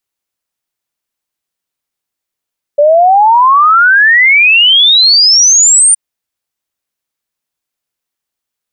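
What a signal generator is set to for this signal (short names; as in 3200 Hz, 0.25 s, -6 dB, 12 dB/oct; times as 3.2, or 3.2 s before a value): log sweep 570 Hz -> 9200 Hz 3.17 s -3 dBFS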